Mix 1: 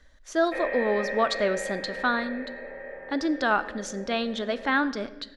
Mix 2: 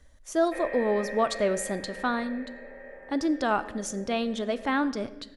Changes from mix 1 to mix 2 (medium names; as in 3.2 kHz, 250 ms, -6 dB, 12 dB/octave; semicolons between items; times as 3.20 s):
speech: add fifteen-band graphic EQ 100 Hz +12 dB, 1.6 kHz -7 dB, 4 kHz -6 dB, 10 kHz +11 dB; background -5.5 dB